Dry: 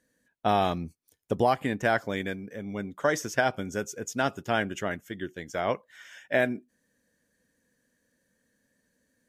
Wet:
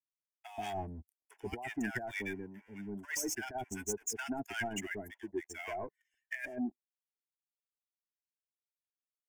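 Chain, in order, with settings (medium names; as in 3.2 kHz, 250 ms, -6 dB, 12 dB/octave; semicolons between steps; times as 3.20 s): expander on every frequency bin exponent 2; low-pass 11 kHz 12 dB/octave; treble shelf 4.3 kHz +9.5 dB; compressor with a negative ratio -31 dBFS, ratio -0.5; waveshaping leveller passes 3; static phaser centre 810 Hz, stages 8; bands offset in time highs, lows 130 ms, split 1 kHz; trim -8 dB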